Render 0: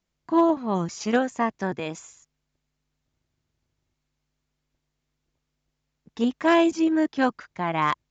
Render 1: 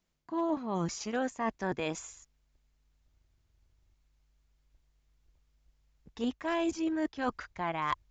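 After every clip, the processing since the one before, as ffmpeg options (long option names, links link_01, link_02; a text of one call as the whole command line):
ffmpeg -i in.wav -af "asubboost=boost=10:cutoff=59,areverse,acompressor=threshold=-28dB:ratio=16,areverse" out.wav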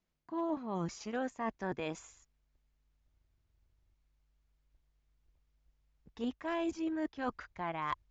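ffmpeg -i in.wav -af "highshelf=frequency=5600:gain=-9,volume=-4dB" out.wav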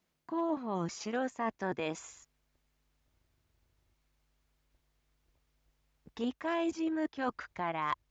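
ffmpeg -i in.wav -filter_complex "[0:a]highpass=frequency=150:poles=1,asplit=2[link_01][link_02];[link_02]acompressor=threshold=-46dB:ratio=6,volume=0.5dB[link_03];[link_01][link_03]amix=inputs=2:normalize=0,volume=1dB" out.wav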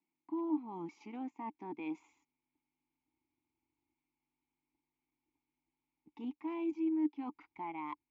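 ffmpeg -i in.wav -filter_complex "[0:a]asplit=3[link_01][link_02][link_03];[link_01]bandpass=frequency=300:width_type=q:width=8,volume=0dB[link_04];[link_02]bandpass=frequency=870:width_type=q:width=8,volume=-6dB[link_05];[link_03]bandpass=frequency=2240:width_type=q:width=8,volume=-9dB[link_06];[link_04][link_05][link_06]amix=inputs=3:normalize=0,volume=4dB" out.wav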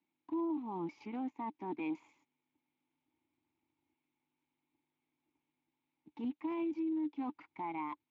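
ffmpeg -i in.wav -af "alimiter=level_in=11dB:limit=-24dB:level=0:latency=1:release=17,volume=-11dB,volume=3.5dB" -ar 16000 -c:a libspeex -b:a 21k out.spx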